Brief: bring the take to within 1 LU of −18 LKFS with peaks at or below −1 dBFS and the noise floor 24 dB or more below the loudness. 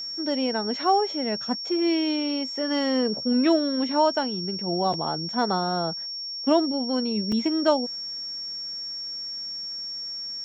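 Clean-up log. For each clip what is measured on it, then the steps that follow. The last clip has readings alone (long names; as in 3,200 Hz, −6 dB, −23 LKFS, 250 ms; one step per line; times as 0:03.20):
number of dropouts 1; longest dropout 3.7 ms; interfering tone 5,500 Hz; level of the tone −31 dBFS; integrated loudness −25.5 LKFS; sample peak −9.5 dBFS; target loudness −18.0 LKFS
→ repair the gap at 0:07.32, 3.7 ms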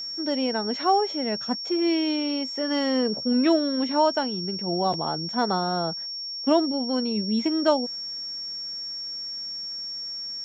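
number of dropouts 0; interfering tone 5,500 Hz; level of the tone −31 dBFS
→ notch filter 5,500 Hz, Q 30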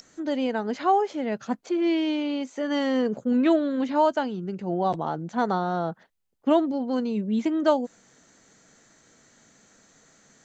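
interfering tone none found; integrated loudness −25.5 LKFS; sample peak −10.0 dBFS; target loudness −18.0 LKFS
→ level +7.5 dB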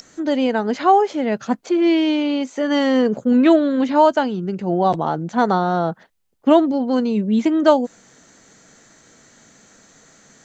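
integrated loudness −18.0 LKFS; sample peak −2.5 dBFS; background noise floor −53 dBFS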